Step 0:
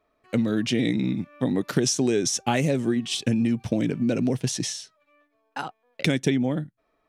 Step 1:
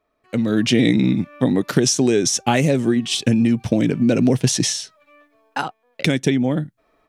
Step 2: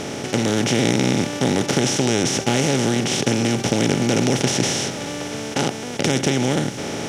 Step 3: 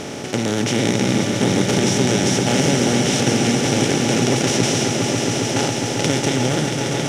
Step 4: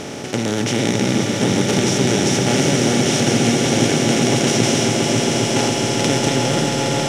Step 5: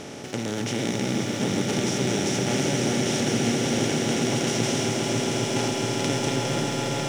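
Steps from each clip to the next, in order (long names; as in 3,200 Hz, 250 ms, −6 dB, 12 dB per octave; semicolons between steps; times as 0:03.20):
automatic gain control gain up to 13.5 dB; level −1 dB
compressor on every frequency bin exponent 0.2; level −9.5 dB
echo that builds up and dies away 136 ms, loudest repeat 5, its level −9 dB; level −1 dB
echo that builds up and dies away 123 ms, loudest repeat 8, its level −15 dB
feedback echo at a low word length 238 ms, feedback 80%, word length 6 bits, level −12.5 dB; level −8.5 dB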